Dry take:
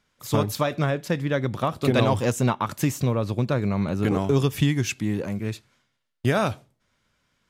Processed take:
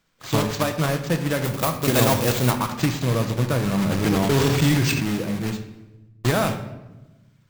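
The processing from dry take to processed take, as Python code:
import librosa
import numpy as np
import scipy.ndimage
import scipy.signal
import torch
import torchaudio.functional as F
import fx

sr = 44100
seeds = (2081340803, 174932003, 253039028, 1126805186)

y = fx.block_float(x, sr, bits=3)
y = np.repeat(y[::4], 4)[:len(y)]
y = fx.high_shelf(y, sr, hz=9400.0, db=11.5, at=(1.44, 2.51))
y = fx.room_shoebox(y, sr, seeds[0], volume_m3=480.0, walls='mixed', distance_m=0.63)
y = fx.sustainer(y, sr, db_per_s=22.0, at=(3.78, 5.03))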